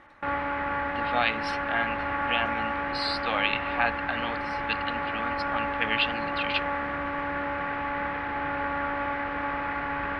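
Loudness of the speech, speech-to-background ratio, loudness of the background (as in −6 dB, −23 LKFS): −30.5 LKFS, −0.5 dB, −30.0 LKFS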